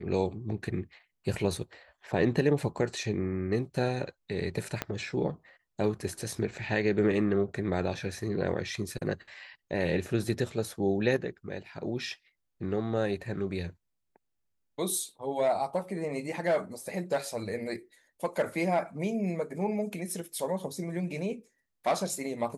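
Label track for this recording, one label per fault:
4.820000	4.820000	pop -14 dBFS

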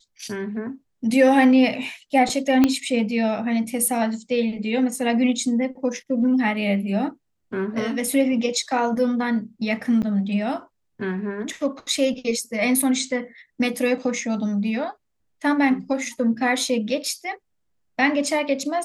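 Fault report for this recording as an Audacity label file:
2.640000	2.640000	pop -5 dBFS
10.020000	10.030000	dropout 8.3 ms

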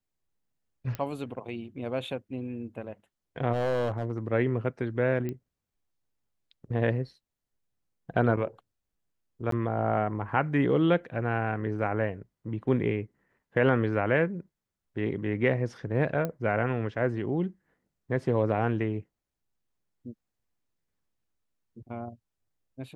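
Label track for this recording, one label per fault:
0.950000	0.950000	pop -20 dBFS
3.520000	4.190000	clipped -23 dBFS
5.290000	5.290000	pop -22 dBFS
9.510000	9.520000	dropout 13 ms
16.250000	16.250000	pop -18 dBFS

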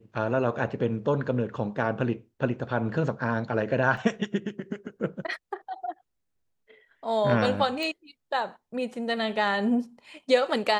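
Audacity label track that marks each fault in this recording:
3.970000	3.970000	dropout 3.5 ms
7.830000	7.830000	pop

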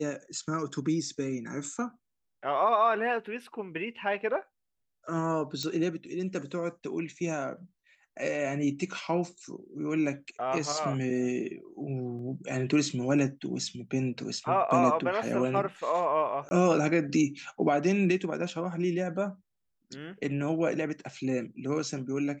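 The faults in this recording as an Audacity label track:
5.630000	5.630000	pop -19 dBFS
12.190000	12.190000	dropout 2.3 ms
16.490000	16.510000	dropout 20 ms

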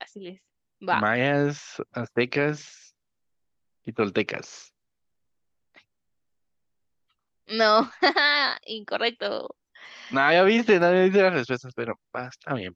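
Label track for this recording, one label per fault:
10.810000	10.810000	dropout 2.8 ms

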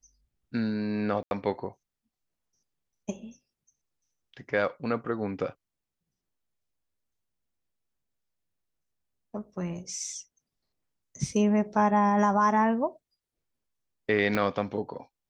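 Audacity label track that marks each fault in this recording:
1.230000	1.310000	dropout 81 ms
14.350000	14.350000	pop -14 dBFS

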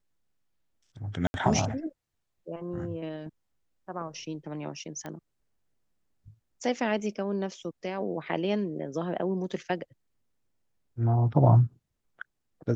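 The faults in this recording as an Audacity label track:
1.270000	1.340000	dropout 71 ms
5.060000	5.060000	pop -24 dBFS

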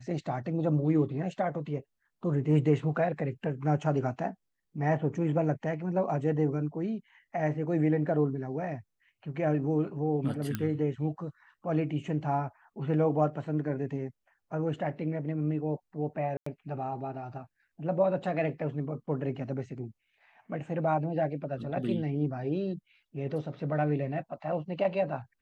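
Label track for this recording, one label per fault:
10.550000	10.550000	pop -17 dBFS
16.370000	16.460000	dropout 94 ms

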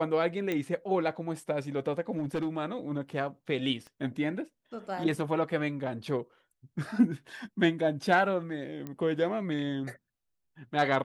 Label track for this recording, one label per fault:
0.520000	0.520000	pop -19 dBFS
2.170000	2.560000	clipped -26.5 dBFS
3.870000	3.870000	pop -34 dBFS
8.870000	8.870000	pop -25 dBFS

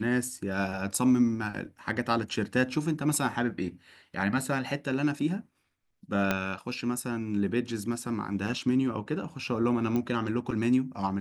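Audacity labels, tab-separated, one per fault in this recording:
6.310000	6.310000	pop -11 dBFS
9.960000	9.960000	pop -18 dBFS

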